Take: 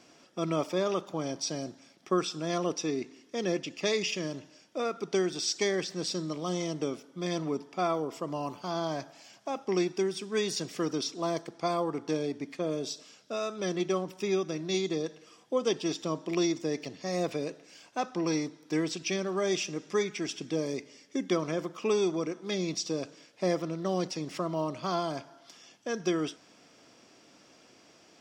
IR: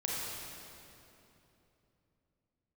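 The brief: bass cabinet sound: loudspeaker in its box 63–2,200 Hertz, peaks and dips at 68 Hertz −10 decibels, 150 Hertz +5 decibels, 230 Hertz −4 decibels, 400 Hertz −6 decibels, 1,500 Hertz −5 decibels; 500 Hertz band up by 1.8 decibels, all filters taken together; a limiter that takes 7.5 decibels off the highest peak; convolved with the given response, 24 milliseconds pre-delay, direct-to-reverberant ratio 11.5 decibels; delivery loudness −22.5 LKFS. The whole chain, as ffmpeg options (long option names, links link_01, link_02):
-filter_complex "[0:a]equalizer=frequency=500:width_type=o:gain=6,alimiter=limit=-19.5dB:level=0:latency=1,asplit=2[link_01][link_02];[1:a]atrim=start_sample=2205,adelay=24[link_03];[link_02][link_03]afir=irnorm=-1:irlink=0,volume=-16.5dB[link_04];[link_01][link_04]amix=inputs=2:normalize=0,highpass=frequency=63:width=0.5412,highpass=frequency=63:width=1.3066,equalizer=frequency=68:width_type=q:width=4:gain=-10,equalizer=frequency=150:width_type=q:width=4:gain=5,equalizer=frequency=230:width_type=q:width=4:gain=-4,equalizer=frequency=400:width_type=q:width=4:gain=-6,equalizer=frequency=1500:width_type=q:width=4:gain=-5,lowpass=frequency=2200:width=0.5412,lowpass=frequency=2200:width=1.3066,volume=10.5dB"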